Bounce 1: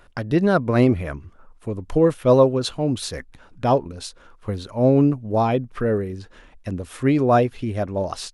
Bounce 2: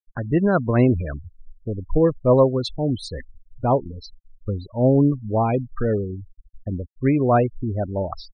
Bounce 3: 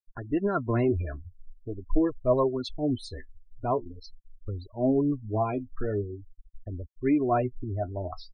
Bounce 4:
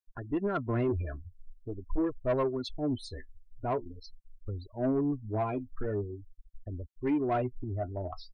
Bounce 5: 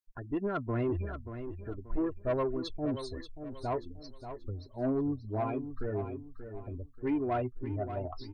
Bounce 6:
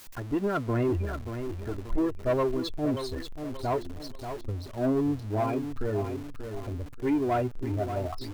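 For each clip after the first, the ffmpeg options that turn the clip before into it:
ffmpeg -i in.wav -af "afftfilt=real='re*gte(hypot(re,im),0.0562)':imag='im*gte(hypot(re,im),0.0562)':win_size=1024:overlap=0.75,lowshelf=frequency=73:gain=10.5,volume=-1.5dB" out.wav
ffmpeg -i in.wav -af "aecho=1:1:2.9:0.61,flanger=delay=1.6:depth=9.9:regen=41:speed=0.44:shape=sinusoidal,volume=-4.5dB" out.wav
ffmpeg -i in.wav -af "asoftclip=type=tanh:threshold=-19.5dB,volume=-2.5dB" out.wav
ffmpeg -i in.wav -af "aecho=1:1:583|1166|1749|2332:0.316|0.108|0.0366|0.0124,volume=-2dB" out.wav
ffmpeg -i in.wav -af "aeval=exprs='val(0)+0.5*0.00668*sgn(val(0))':channel_layout=same,volume=4dB" out.wav

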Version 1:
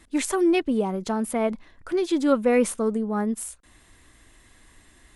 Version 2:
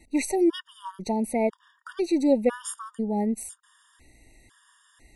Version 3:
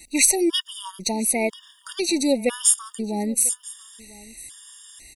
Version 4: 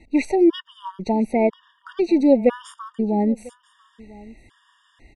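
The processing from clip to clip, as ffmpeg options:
ffmpeg -i in.wav -af "afftfilt=real='re*gt(sin(2*PI*1*pts/sr)*(1-2*mod(floor(b*sr/1024/940),2)),0)':imag='im*gt(sin(2*PI*1*pts/sr)*(1-2*mod(floor(b*sr/1024/940),2)),0)':win_size=1024:overlap=0.75" out.wav
ffmpeg -i in.wav -af "aecho=1:1:998:0.0794,aexciter=amount=3.8:drive=8.3:freq=2200" out.wav
ffmpeg -i in.wav -af "lowpass=1200,volume=6dB" out.wav

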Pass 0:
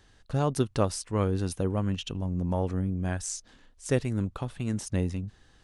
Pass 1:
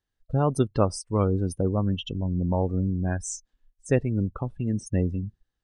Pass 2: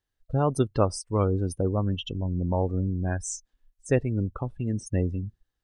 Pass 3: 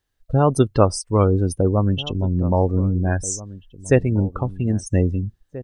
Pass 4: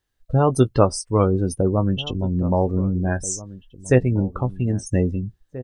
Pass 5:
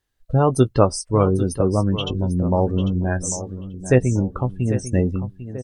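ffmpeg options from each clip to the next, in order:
ffmpeg -i in.wav -af "afftdn=noise_reduction=29:noise_floor=-36,volume=3.5dB" out.wav
ffmpeg -i in.wav -af "equalizer=frequency=190:width=1.9:gain=-3.5" out.wav
ffmpeg -i in.wav -filter_complex "[0:a]asplit=2[link_01][link_02];[link_02]adelay=1633,volume=-17dB,highshelf=frequency=4000:gain=-36.7[link_03];[link_01][link_03]amix=inputs=2:normalize=0,volume=7.5dB" out.wav
ffmpeg -i in.wav -filter_complex "[0:a]asplit=2[link_01][link_02];[link_02]adelay=16,volume=-10.5dB[link_03];[link_01][link_03]amix=inputs=2:normalize=0,volume=-1dB" out.wav
ffmpeg -i in.wav -af "aecho=1:1:797:0.237,volume=1dB" -ar 48000 -c:a libmp3lame -b:a 96k out.mp3

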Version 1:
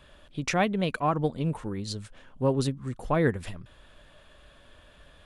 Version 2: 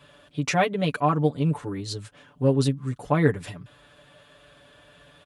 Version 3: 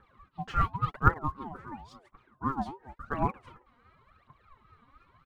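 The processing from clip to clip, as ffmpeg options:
ffmpeg -i in.wav -af "highpass=frequency=61:width=0.5412,highpass=frequency=61:width=1.3066,aecho=1:1:6.9:0.99" out.wav
ffmpeg -i in.wav -af "bandpass=frequency=670:width_type=q:width=2.5:csg=0,aphaser=in_gain=1:out_gain=1:delay=4.3:decay=0.79:speed=0.93:type=triangular,aeval=exprs='val(0)*sin(2*PI*570*n/s+570*0.2/3.6*sin(2*PI*3.6*n/s))':channel_layout=same" out.wav

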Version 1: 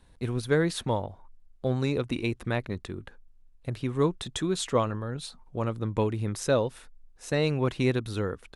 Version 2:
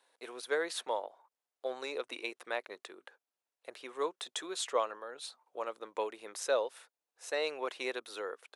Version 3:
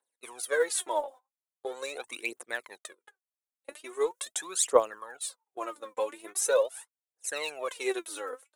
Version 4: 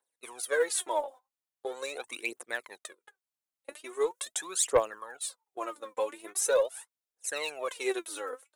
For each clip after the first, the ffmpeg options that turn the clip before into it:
ffmpeg -i in.wav -af "highpass=frequency=470:width=0.5412,highpass=frequency=470:width=1.3066,volume=-4dB" out.wav
ffmpeg -i in.wav -af "aphaser=in_gain=1:out_gain=1:delay=4:decay=0.76:speed=0.42:type=triangular,agate=range=-20dB:threshold=-46dB:ratio=16:detection=peak,highshelf=frequency=6100:width_type=q:width=1.5:gain=8.5" out.wav
ffmpeg -i in.wav -af "asoftclip=type=tanh:threshold=-14dB" out.wav

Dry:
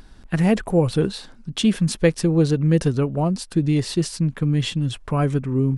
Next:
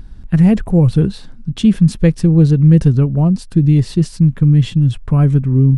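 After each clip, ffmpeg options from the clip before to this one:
ffmpeg -i in.wav -af "bass=frequency=250:gain=15,treble=frequency=4000:gain=-2,volume=-2dB" out.wav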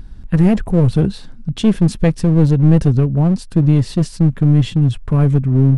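ffmpeg -i in.wav -af "aeval=exprs='clip(val(0),-1,0.224)':channel_layout=same" out.wav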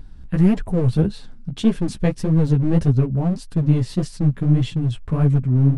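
ffmpeg -i in.wav -af "flanger=delay=6.8:depth=9.8:regen=3:speed=1.7:shape=sinusoidal,volume=-2dB" out.wav

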